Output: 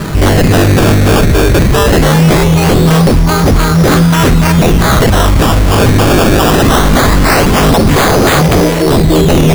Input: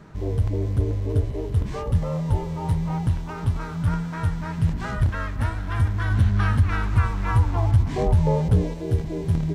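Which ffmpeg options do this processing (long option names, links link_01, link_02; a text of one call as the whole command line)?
ffmpeg -i in.wav -filter_complex "[0:a]asettb=1/sr,asplit=3[link_01][link_02][link_03];[link_01]atrim=end=8.424[link_04];[link_02]atrim=start=8.42:end=8.86,asetpts=PTS-STARTPTS,afade=type=in:duration=0.004:curve=qsin,afade=type=out:start_time=0.436:duration=0.004:curve=qsin,aemphasis=mode=production:type=bsi[link_05];[link_03]atrim=start=8.856[link_06];[link_04][link_05]acrossfade=duration=0.004:curve1=hsin:curve2=qsin[link_07];[link_07][link_06]acrossfade=duration=0.004:curve1=qsin:curve2=hsin,acrusher=samples=15:mix=1:aa=0.000001:lfo=1:lforange=15:lforate=0.21,aeval=exprs='0.0562*(abs(mod(val(0)/0.0562+3,4)-2)-1)':channel_layout=same,bandreject=frequency=910:width=16,alimiter=level_in=30dB:limit=-1dB:release=50:level=0:latency=1,volume=-1dB" out.wav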